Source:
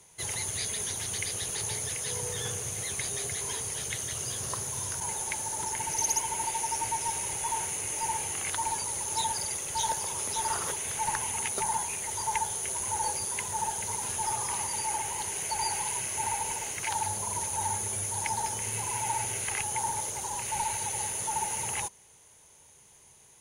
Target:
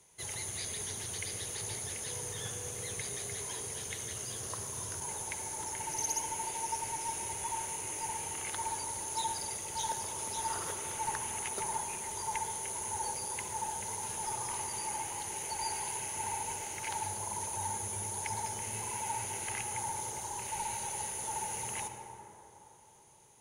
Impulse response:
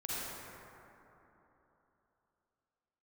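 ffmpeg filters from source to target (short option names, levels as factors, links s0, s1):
-filter_complex "[0:a]asplit=2[s0][s1];[s1]equalizer=f=350:t=o:w=1.6:g=6[s2];[1:a]atrim=start_sample=2205,asetrate=37926,aresample=44100[s3];[s2][s3]afir=irnorm=-1:irlink=0,volume=0.335[s4];[s0][s4]amix=inputs=2:normalize=0,volume=0.398"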